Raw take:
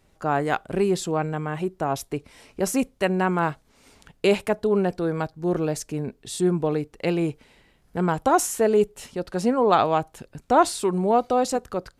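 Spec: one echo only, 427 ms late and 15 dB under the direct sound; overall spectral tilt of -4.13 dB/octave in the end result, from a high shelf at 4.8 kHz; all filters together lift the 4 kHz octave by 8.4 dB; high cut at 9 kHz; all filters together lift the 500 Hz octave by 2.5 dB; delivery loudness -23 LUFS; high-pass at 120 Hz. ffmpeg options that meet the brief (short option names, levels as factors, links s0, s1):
-af "highpass=120,lowpass=9000,equalizer=f=500:t=o:g=3,equalizer=f=4000:t=o:g=7,highshelf=f=4800:g=7.5,aecho=1:1:427:0.178,volume=0.891"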